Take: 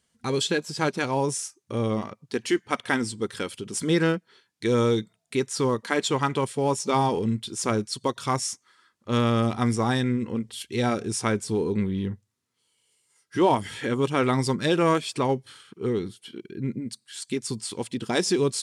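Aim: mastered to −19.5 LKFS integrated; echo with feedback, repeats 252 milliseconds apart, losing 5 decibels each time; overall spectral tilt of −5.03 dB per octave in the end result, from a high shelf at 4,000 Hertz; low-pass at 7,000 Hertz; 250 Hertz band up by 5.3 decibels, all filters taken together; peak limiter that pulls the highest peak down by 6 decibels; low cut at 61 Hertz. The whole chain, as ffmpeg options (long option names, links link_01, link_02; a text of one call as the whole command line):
ffmpeg -i in.wav -af "highpass=61,lowpass=7000,equalizer=frequency=250:width_type=o:gain=6.5,highshelf=frequency=4000:gain=5.5,alimiter=limit=-14dB:level=0:latency=1,aecho=1:1:252|504|756|1008|1260|1512|1764:0.562|0.315|0.176|0.0988|0.0553|0.031|0.0173,volume=4.5dB" out.wav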